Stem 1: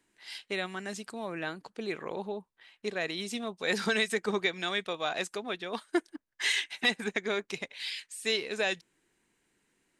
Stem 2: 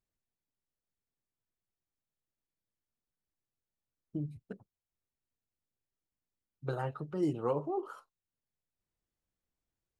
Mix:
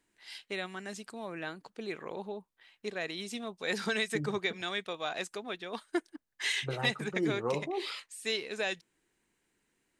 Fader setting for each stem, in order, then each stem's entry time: -3.5 dB, -0.5 dB; 0.00 s, 0.00 s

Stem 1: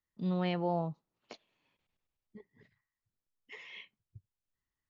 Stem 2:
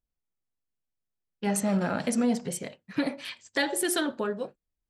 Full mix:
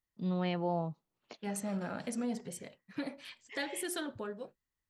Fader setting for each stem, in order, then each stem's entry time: -1.0 dB, -10.5 dB; 0.00 s, 0.00 s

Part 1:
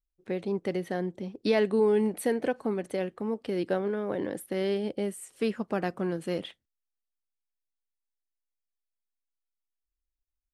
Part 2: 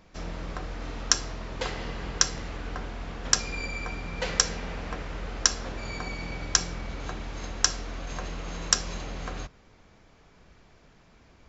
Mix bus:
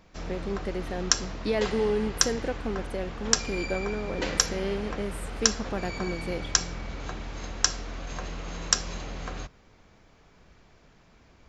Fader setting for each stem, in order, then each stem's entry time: -2.5 dB, -0.5 dB; 0.00 s, 0.00 s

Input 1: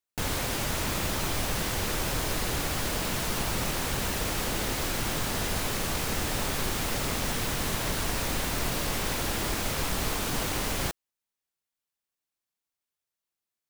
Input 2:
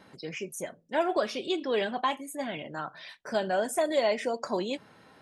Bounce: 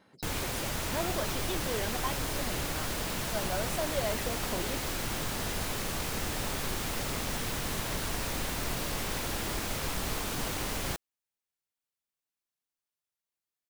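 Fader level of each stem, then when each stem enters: -4.0 dB, -8.0 dB; 0.05 s, 0.00 s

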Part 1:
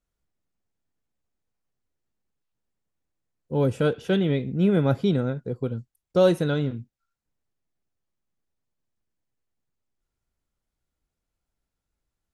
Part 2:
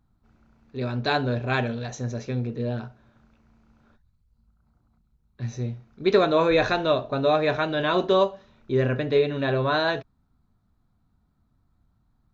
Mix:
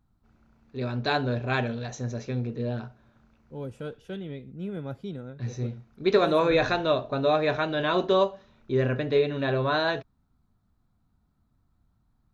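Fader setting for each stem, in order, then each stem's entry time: -14.0 dB, -2.0 dB; 0.00 s, 0.00 s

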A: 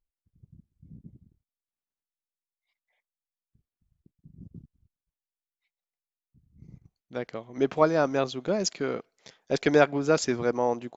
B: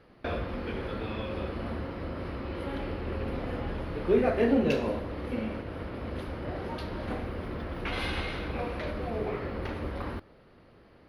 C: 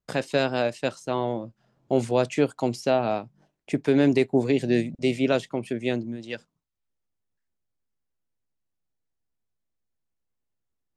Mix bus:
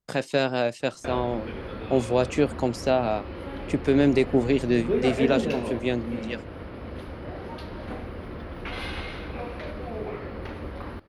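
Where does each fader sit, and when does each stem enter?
mute, -1.0 dB, 0.0 dB; mute, 0.80 s, 0.00 s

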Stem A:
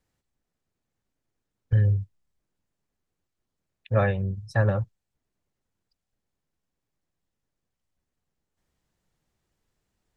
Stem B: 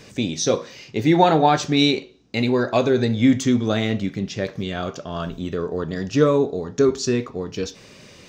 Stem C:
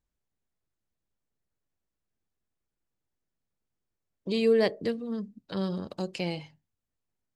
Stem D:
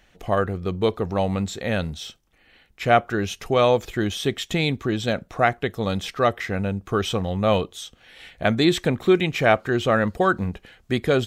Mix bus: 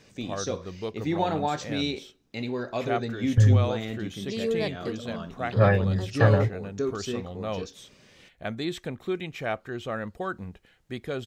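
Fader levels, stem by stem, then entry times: +2.5 dB, -11.5 dB, -5.0 dB, -12.5 dB; 1.65 s, 0.00 s, 0.00 s, 0.00 s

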